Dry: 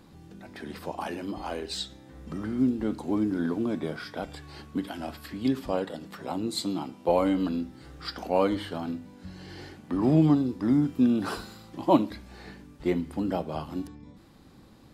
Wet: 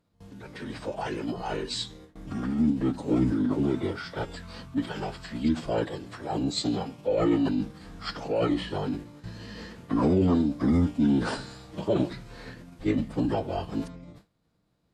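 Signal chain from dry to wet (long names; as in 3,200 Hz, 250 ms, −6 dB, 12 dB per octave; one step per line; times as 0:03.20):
brickwall limiter −18 dBFS, peak gain reduction 10.5 dB
phase-vocoder pitch shift with formants kept −9 semitones
noise gate with hold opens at −41 dBFS
level +3.5 dB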